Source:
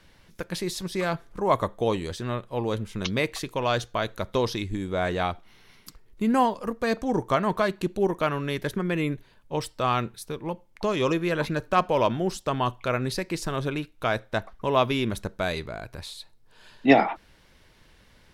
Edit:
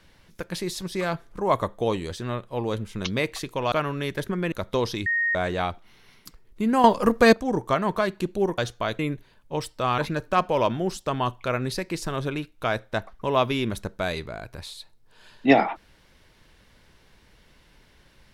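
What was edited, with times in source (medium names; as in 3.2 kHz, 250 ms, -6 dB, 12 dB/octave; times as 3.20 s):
3.72–4.13 s: swap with 8.19–8.99 s
4.67–4.96 s: bleep 1.86 kHz -20.5 dBFS
6.45–6.94 s: gain +10 dB
9.98–11.38 s: delete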